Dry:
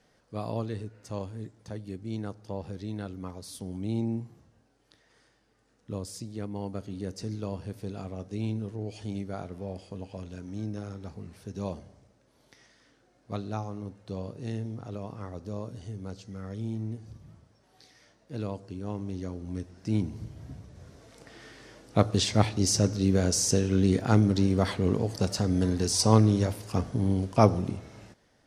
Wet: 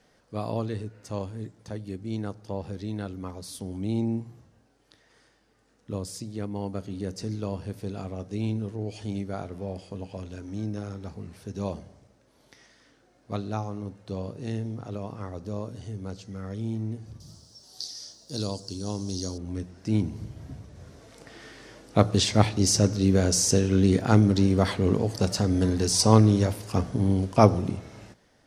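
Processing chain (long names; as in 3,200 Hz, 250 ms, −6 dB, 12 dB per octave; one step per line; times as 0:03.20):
0:17.20–0:19.38: high shelf with overshoot 3,300 Hz +14 dB, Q 3
mains-hum notches 60/120/180 Hz
level +3 dB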